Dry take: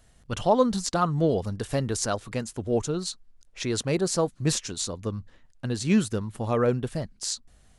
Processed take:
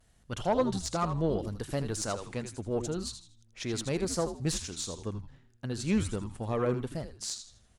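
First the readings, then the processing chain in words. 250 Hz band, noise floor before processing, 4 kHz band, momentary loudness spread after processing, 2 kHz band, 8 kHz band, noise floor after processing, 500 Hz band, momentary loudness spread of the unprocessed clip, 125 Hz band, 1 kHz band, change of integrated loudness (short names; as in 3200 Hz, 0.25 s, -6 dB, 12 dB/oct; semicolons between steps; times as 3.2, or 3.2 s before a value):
-6.0 dB, -59 dBFS, -5.5 dB, 10 LU, -5.5 dB, -5.5 dB, -64 dBFS, -6.0 dB, 11 LU, -5.5 dB, -6.5 dB, -6.0 dB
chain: frequency-shifting echo 80 ms, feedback 32%, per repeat -120 Hz, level -9 dB; vibrato 0.76 Hz 40 cents; tube stage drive 12 dB, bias 0.35; gain -5 dB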